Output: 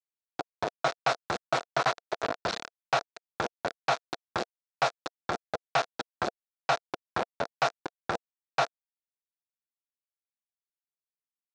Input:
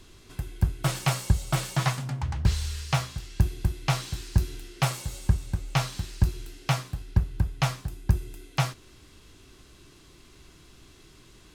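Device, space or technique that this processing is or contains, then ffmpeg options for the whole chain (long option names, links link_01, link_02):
hand-held game console: -filter_complex "[0:a]asplit=3[link_01][link_02][link_03];[link_01]afade=type=out:start_time=1.44:duration=0.02[link_04];[link_02]lowshelf=frequency=100:gain=5.5,afade=type=in:start_time=1.44:duration=0.02,afade=type=out:start_time=2.33:duration=0.02[link_05];[link_03]afade=type=in:start_time=2.33:duration=0.02[link_06];[link_04][link_05][link_06]amix=inputs=3:normalize=0,acrusher=bits=3:mix=0:aa=0.000001,highpass=410,equalizer=frequency=480:width_type=q:width=4:gain=4,equalizer=frequency=690:width_type=q:width=4:gain=8,equalizer=frequency=1400:width_type=q:width=4:gain=5,equalizer=frequency=2100:width_type=q:width=4:gain=-4,equalizer=frequency=3000:width_type=q:width=4:gain=-7,equalizer=frequency=4900:width_type=q:width=4:gain=-4,lowpass=frequency=5000:width=0.5412,lowpass=frequency=5000:width=1.3066"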